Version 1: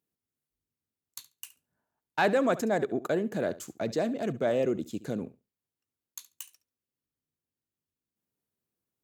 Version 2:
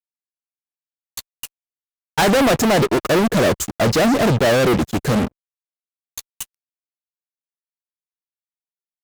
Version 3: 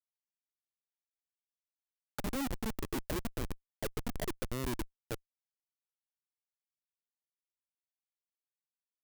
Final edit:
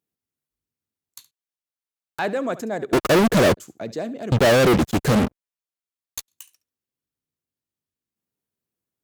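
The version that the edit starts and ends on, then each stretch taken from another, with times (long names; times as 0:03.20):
1
0:01.31–0:02.19: punch in from 3
0:02.93–0:03.57: punch in from 2
0:04.32–0:06.28: punch in from 2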